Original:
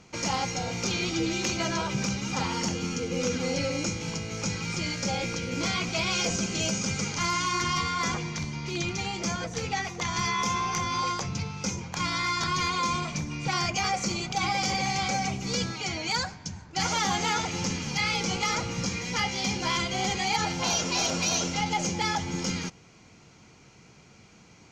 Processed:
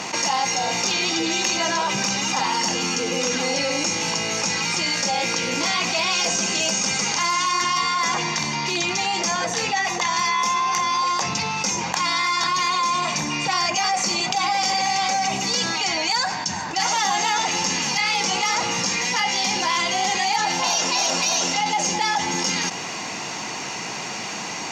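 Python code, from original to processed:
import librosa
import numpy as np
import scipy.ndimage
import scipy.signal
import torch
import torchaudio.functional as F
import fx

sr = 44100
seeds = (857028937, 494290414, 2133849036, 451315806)

y = scipy.signal.sosfilt(scipy.signal.butter(2, 380.0, 'highpass', fs=sr, output='sos'), x)
y = y + 0.43 * np.pad(y, (int(1.1 * sr / 1000.0), 0))[:len(y)]
y = fx.env_flatten(y, sr, amount_pct=70)
y = y * librosa.db_to_amplitude(2.5)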